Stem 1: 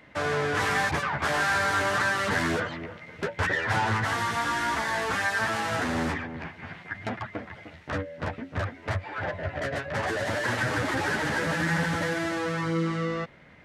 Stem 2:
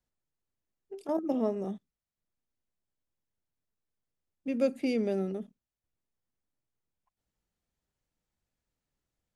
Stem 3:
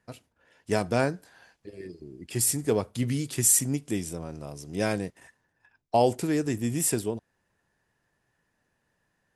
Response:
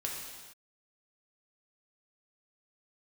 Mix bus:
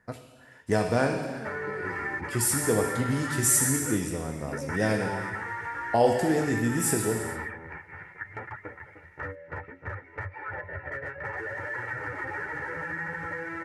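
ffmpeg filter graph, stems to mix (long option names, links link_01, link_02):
-filter_complex "[0:a]aecho=1:1:2.2:0.75,adelay=1300,volume=-7.5dB[link_01];[1:a]volume=-12dB[link_02];[2:a]volume=2dB,asplit=2[link_03][link_04];[link_04]volume=-5.5dB[link_05];[link_01][link_03]amix=inputs=2:normalize=0,highshelf=frequency=2600:width_type=q:width=3:gain=-10.5,acompressor=threshold=-33dB:ratio=2.5,volume=0dB[link_06];[3:a]atrim=start_sample=2205[link_07];[link_05][link_07]afir=irnorm=-1:irlink=0[link_08];[link_02][link_06][link_08]amix=inputs=3:normalize=0"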